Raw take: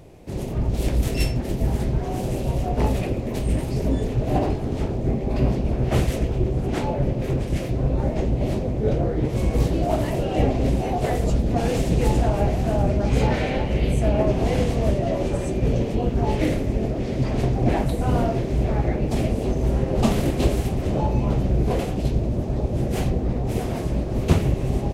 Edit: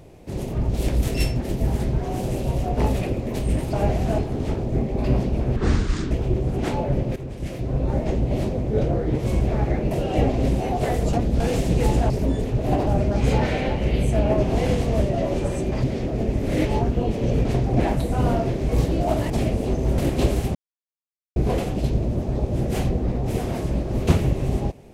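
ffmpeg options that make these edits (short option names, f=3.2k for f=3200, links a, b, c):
-filter_complex "[0:a]asplit=19[a][b][c][d][e][f][g][h][i][j][k][l][m][n][o][p][q][r][s];[a]atrim=end=3.732[t];[b]atrim=start=12.308:end=12.762[u];[c]atrim=start=4.498:end=5.884[v];[d]atrim=start=5.88:end=6.21,asetpts=PTS-STARTPTS,asetrate=26460,aresample=44100[w];[e]atrim=start=6.206:end=7.26,asetpts=PTS-STARTPTS,afade=t=out:st=1.05:d=0.004:c=hsin:silence=0.237137[x];[f]atrim=start=7.26:end=9.512,asetpts=PTS-STARTPTS,afade=t=in:d=0.77:silence=0.237137[y];[g]atrim=start=18.578:end=19.082[z];[h]atrim=start=10.118:end=11.342[aa];[i]atrim=start=11.338:end=11.612,asetpts=PTS-STARTPTS,areverse[ab];[j]atrim=start=11.608:end=12.312[ac];[k]atrim=start=3.728:end=4.502[ad];[l]atrim=start=12.758:end=15.612[ae];[m]atrim=start=15.608:end=17.342,asetpts=PTS-STARTPTS,areverse[af];[n]atrim=start=17.338:end=18.582[ag];[o]atrim=start=9.508:end=10.122[ah];[p]atrim=start=19.078:end=19.762[ai];[q]atrim=start=20.188:end=20.76,asetpts=PTS-STARTPTS,afade=t=out:st=0.568:d=0.004:c=hsin[aj];[r]atrim=start=20.76:end=21.57,asetpts=PTS-STARTPTS,volume=0[ak];[s]atrim=start=21.57,asetpts=PTS-STARTPTS,afade=t=in:d=0.004:c=hsin[al];[t][u]acrossfade=d=0.004:c1=hsin:c2=hsin[am];[am][v]acrossfade=d=0.004:c1=hsin:c2=hsin[an];[an][w]acrossfade=d=0.004:c1=hsin:c2=hsin[ao];[x][y]concat=n=2:v=0:a=1[ap];[ao][ap]acrossfade=d=0.004:c1=hsin:c2=hsin[aq];[aq][z]acrossfade=d=0.004:c1=hsin:c2=hsin[ar];[ar][aa]acrossfade=d=0.004:c1=hsin:c2=hsin[as];[as][ab]acrossfade=d=0.004:c1=hsin:c2=hsin[at];[at][ac]acrossfade=d=0.004:c1=hsin:c2=hsin[au];[au][ad]acrossfade=d=0.004:c1=hsin:c2=hsin[av];[av][ae]acrossfade=d=0.004:c1=hsin:c2=hsin[aw];[aw][af]acrossfade=d=0.004:c1=hsin:c2=hsin[ax];[ax][ag]acrossfade=d=0.004:c1=hsin:c2=hsin[ay];[ay][ah]acrossfade=d=0.004:c1=hsin:c2=hsin[az];[az][ai]acrossfade=d=0.004:c1=hsin:c2=hsin[ba];[aj][ak][al]concat=n=3:v=0:a=1[bb];[ba][bb]acrossfade=d=0.004:c1=hsin:c2=hsin"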